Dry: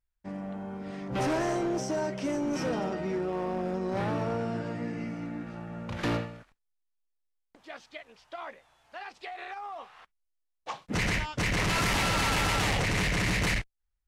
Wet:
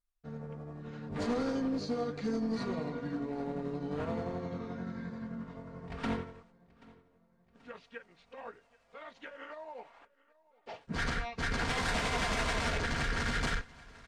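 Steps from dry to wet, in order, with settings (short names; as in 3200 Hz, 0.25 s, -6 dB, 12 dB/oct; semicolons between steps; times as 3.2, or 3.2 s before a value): delay-line pitch shifter -4.5 st; comb 4.3 ms, depth 45%; feedback echo 0.782 s, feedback 56%, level -23 dB; gain -4.5 dB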